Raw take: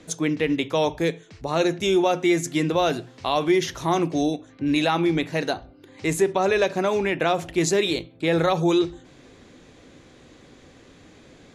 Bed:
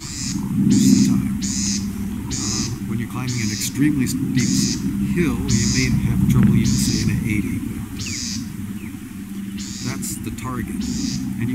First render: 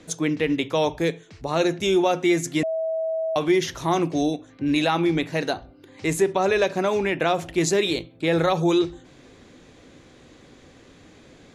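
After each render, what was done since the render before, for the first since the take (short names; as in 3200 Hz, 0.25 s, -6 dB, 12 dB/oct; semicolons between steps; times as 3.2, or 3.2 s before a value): 2.63–3.36 bleep 646 Hz -22.5 dBFS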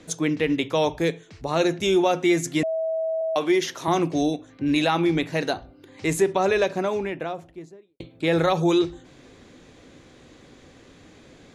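3.21–3.88 HPF 250 Hz; 6.37–8 studio fade out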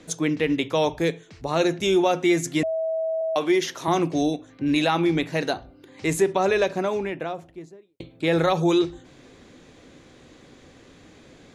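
notches 50/100 Hz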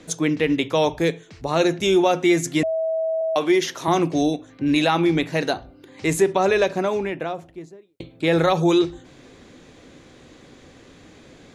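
gain +2.5 dB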